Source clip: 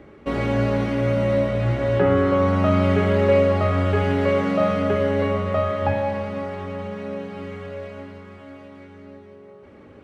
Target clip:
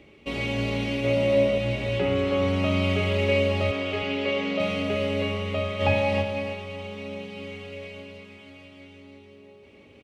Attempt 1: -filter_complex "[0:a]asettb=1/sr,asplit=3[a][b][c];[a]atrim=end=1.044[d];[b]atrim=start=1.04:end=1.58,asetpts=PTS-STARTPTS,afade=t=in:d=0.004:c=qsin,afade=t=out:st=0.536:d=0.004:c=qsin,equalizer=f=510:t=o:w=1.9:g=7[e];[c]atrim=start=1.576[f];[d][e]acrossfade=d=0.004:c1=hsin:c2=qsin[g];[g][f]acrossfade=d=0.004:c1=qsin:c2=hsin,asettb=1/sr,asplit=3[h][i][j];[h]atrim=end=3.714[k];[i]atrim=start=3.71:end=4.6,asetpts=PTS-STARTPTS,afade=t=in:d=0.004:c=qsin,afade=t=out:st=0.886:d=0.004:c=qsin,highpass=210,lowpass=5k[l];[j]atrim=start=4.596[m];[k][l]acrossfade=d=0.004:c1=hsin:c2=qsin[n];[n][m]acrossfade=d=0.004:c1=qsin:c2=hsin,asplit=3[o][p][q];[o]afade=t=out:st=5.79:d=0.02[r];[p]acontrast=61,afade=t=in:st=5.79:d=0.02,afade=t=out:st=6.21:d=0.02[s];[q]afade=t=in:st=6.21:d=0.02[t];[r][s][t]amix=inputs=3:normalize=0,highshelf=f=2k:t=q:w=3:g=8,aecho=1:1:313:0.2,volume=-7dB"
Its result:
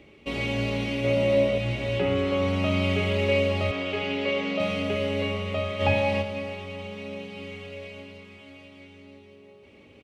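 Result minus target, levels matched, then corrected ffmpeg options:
echo-to-direct -6 dB
-filter_complex "[0:a]asettb=1/sr,asplit=3[a][b][c];[a]atrim=end=1.044[d];[b]atrim=start=1.04:end=1.58,asetpts=PTS-STARTPTS,afade=t=in:d=0.004:c=qsin,afade=t=out:st=0.536:d=0.004:c=qsin,equalizer=f=510:t=o:w=1.9:g=7[e];[c]atrim=start=1.576[f];[d][e]acrossfade=d=0.004:c1=hsin:c2=qsin[g];[g][f]acrossfade=d=0.004:c1=qsin:c2=hsin,asettb=1/sr,asplit=3[h][i][j];[h]atrim=end=3.714[k];[i]atrim=start=3.71:end=4.6,asetpts=PTS-STARTPTS,afade=t=in:d=0.004:c=qsin,afade=t=out:st=0.886:d=0.004:c=qsin,highpass=210,lowpass=5k[l];[j]atrim=start=4.596[m];[k][l]acrossfade=d=0.004:c1=hsin:c2=qsin[n];[n][m]acrossfade=d=0.004:c1=qsin:c2=hsin,asplit=3[o][p][q];[o]afade=t=out:st=5.79:d=0.02[r];[p]acontrast=61,afade=t=in:st=5.79:d=0.02,afade=t=out:st=6.21:d=0.02[s];[q]afade=t=in:st=6.21:d=0.02[t];[r][s][t]amix=inputs=3:normalize=0,highshelf=f=2k:t=q:w=3:g=8,aecho=1:1:313:0.398,volume=-7dB"

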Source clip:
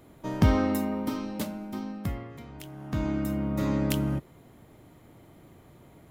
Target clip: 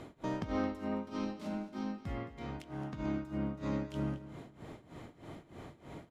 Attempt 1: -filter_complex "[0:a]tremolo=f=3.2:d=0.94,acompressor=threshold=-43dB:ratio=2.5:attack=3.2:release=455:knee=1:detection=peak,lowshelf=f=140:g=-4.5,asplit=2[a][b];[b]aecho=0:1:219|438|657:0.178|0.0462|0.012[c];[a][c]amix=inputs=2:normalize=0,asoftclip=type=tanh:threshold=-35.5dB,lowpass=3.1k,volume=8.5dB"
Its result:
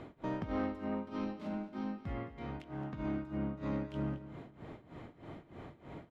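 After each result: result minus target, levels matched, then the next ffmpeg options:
soft clip: distortion +12 dB; 4000 Hz band -3.0 dB
-filter_complex "[0:a]tremolo=f=3.2:d=0.94,acompressor=threshold=-43dB:ratio=2.5:attack=3.2:release=455:knee=1:detection=peak,lowshelf=f=140:g=-4.5,asplit=2[a][b];[b]aecho=0:1:219|438|657:0.178|0.0462|0.012[c];[a][c]amix=inputs=2:normalize=0,asoftclip=type=tanh:threshold=-28.5dB,lowpass=3.1k,volume=8.5dB"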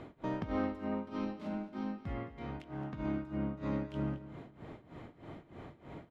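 4000 Hz band -3.5 dB
-filter_complex "[0:a]tremolo=f=3.2:d=0.94,acompressor=threshold=-43dB:ratio=2.5:attack=3.2:release=455:knee=1:detection=peak,lowshelf=f=140:g=-4.5,asplit=2[a][b];[b]aecho=0:1:219|438|657:0.178|0.0462|0.012[c];[a][c]amix=inputs=2:normalize=0,asoftclip=type=tanh:threshold=-28.5dB,lowpass=6.5k,volume=8.5dB"

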